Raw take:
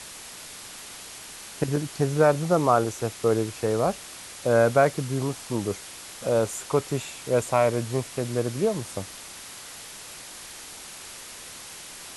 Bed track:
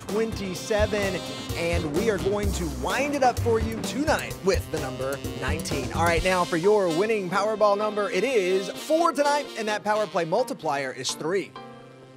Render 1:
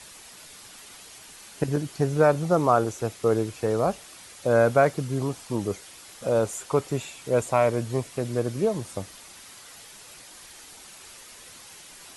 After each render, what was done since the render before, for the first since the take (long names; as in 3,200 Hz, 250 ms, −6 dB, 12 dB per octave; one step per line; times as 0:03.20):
broadband denoise 7 dB, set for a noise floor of −42 dBFS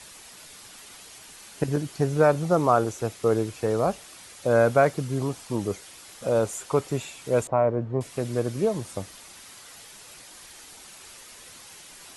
0:07.47–0:08.01: low-pass filter 1,100 Hz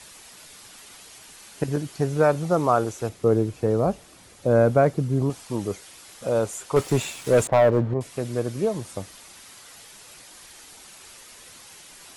0:03.09–0:05.30: tilt shelving filter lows +6 dB, about 670 Hz
0:06.76–0:07.94: leveller curve on the samples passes 2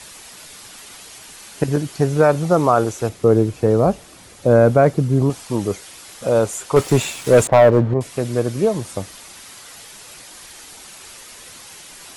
level +6.5 dB
brickwall limiter −3 dBFS, peak gain reduction 2.5 dB